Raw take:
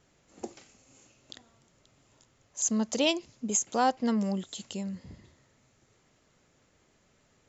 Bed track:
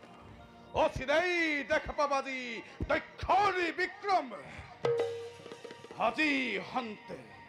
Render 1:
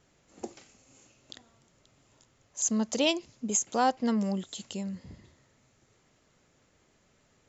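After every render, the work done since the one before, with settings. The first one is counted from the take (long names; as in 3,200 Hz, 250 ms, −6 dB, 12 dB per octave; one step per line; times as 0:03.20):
no processing that can be heard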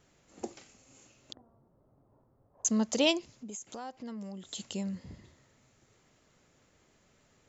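0:01.33–0:02.65: low-pass filter 1,000 Hz 24 dB per octave
0:03.31–0:04.45: downward compressor 3 to 1, threshold −44 dBFS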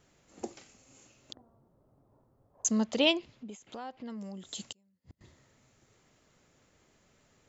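0:02.84–0:04.10: high shelf with overshoot 4,700 Hz −10 dB, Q 1.5
0:04.72–0:05.21: gate with flip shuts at −38 dBFS, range −36 dB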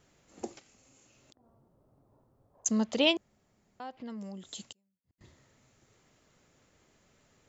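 0:00.59–0:02.66: downward compressor 5 to 1, threshold −59 dBFS
0:03.17–0:03.80: fill with room tone
0:04.35–0:05.18: fade out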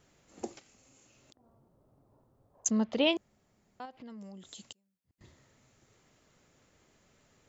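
0:02.70–0:03.13: high-frequency loss of the air 190 metres
0:03.85–0:04.65: downward compressor 2 to 1, threshold −48 dBFS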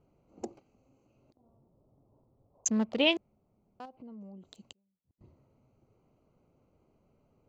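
adaptive Wiener filter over 25 samples
dynamic equaliser 2,300 Hz, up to +5 dB, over −48 dBFS, Q 1.2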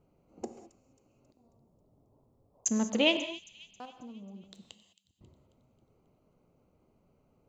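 delay with a high-pass on its return 270 ms, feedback 49%, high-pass 3,500 Hz, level −14 dB
reverb whose tail is shaped and stops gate 230 ms flat, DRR 8.5 dB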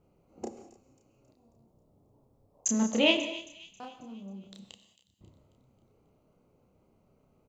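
double-tracking delay 31 ms −3 dB
single-tap delay 285 ms −21.5 dB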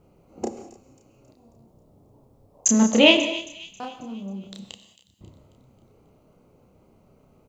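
level +9.5 dB
brickwall limiter −1 dBFS, peak gain reduction 1.5 dB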